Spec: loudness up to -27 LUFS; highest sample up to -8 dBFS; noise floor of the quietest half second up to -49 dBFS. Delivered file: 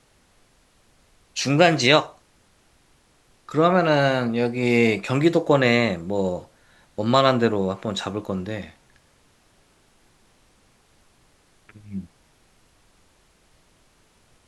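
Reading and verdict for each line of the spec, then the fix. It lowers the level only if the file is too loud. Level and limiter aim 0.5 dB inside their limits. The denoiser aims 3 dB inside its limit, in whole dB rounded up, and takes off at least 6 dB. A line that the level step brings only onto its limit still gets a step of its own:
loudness -21.0 LUFS: fail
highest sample -1.5 dBFS: fail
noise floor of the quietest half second -60 dBFS: pass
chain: trim -6.5 dB; peak limiter -8.5 dBFS

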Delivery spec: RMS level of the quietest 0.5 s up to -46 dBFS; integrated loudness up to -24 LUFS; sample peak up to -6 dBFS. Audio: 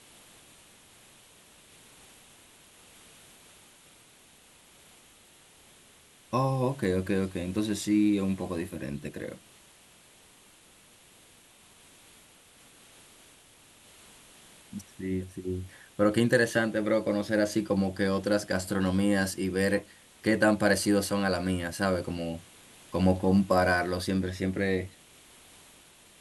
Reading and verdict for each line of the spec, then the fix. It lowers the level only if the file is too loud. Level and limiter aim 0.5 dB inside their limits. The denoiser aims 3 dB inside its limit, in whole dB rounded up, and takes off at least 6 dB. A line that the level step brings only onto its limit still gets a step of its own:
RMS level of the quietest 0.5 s -57 dBFS: pass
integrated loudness -28.0 LUFS: pass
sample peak -9.5 dBFS: pass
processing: none needed

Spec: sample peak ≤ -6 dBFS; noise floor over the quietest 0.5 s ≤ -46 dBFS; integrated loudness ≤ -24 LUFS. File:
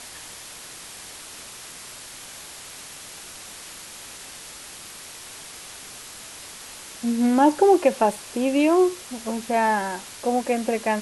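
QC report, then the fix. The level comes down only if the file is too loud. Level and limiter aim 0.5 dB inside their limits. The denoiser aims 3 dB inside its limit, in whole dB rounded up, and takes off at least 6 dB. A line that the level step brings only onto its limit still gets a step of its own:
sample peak -5.5 dBFS: fail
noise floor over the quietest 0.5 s -41 dBFS: fail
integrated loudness -21.5 LUFS: fail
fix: noise reduction 6 dB, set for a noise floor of -41 dBFS; trim -3 dB

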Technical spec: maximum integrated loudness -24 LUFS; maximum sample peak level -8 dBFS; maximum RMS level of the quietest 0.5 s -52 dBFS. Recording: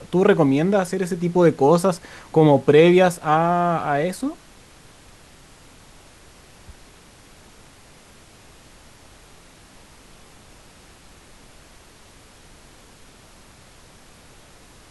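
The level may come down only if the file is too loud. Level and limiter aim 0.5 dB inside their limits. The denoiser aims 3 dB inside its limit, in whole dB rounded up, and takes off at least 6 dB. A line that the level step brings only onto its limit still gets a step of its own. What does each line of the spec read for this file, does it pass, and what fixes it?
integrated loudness -18.0 LUFS: fail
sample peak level -3.5 dBFS: fail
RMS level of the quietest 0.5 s -48 dBFS: fail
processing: trim -6.5 dB

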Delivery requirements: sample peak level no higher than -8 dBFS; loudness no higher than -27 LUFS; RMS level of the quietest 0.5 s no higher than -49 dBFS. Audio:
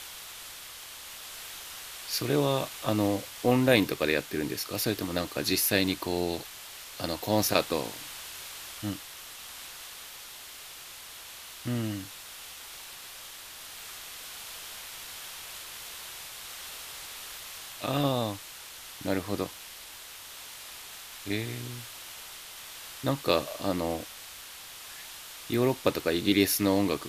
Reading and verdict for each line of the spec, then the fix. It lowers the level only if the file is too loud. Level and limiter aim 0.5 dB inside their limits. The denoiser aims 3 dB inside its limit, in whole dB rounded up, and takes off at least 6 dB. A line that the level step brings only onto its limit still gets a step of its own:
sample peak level -5.5 dBFS: fail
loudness -31.5 LUFS: pass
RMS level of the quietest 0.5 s -46 dBFS: fail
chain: noise reduction 6 dB, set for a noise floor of -46 dBFS; peak limiter -8.5 dBFS

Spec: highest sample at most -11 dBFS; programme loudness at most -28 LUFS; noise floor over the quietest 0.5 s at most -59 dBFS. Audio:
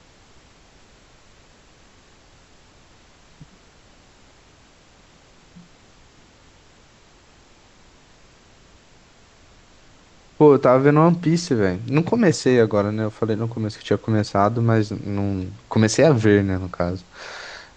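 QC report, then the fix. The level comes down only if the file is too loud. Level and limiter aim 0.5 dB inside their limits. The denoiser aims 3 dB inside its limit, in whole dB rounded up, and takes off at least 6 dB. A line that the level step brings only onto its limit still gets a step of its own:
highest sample -3.0 dBFS: fail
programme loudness -19.0 LUFS: fail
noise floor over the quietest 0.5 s -52 dBFS: fail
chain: trim -9.5 dB

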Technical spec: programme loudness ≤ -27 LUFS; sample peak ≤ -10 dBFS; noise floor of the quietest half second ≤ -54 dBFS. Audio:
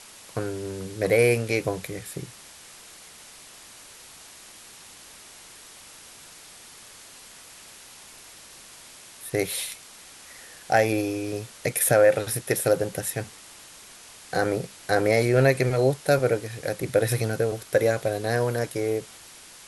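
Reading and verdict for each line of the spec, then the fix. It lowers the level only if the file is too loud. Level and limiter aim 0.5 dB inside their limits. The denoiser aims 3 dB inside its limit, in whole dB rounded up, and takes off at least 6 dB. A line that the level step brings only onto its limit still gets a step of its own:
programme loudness -24.5 LUFS: fail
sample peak -6.0 dBFS: fail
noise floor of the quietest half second -47 dBFS: fail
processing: noise reduction 7 dB, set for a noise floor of -47 dBFS; trim -3 dB; peak limiter -10.5 dBFS

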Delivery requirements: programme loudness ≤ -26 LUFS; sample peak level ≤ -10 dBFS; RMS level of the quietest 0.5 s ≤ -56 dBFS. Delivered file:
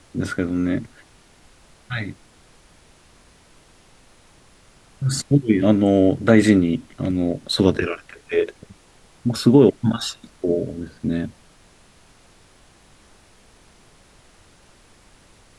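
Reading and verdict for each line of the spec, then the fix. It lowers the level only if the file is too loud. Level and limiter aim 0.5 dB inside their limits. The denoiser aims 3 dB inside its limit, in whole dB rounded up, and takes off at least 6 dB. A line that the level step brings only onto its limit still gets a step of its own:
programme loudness -20.0 LUFS: fail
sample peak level -2.5 dBFS: fail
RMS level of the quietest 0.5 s -52 dBFS: fail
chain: trim -6.5 dB; peak limiter -10.5 dBFS

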